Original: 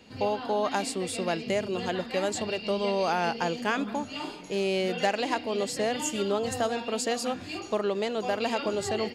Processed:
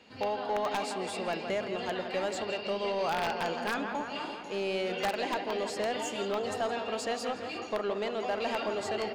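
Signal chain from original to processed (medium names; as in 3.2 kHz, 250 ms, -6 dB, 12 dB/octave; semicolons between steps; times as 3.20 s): filtered feedback delay 166 ms, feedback 71%, low-pass 3 kHz, level -9 dB; integer overflow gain 16 dB; overdrive pedal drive 11 dB, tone 2.7 kHz, clips at -16 dBFS; trim -5.5 dB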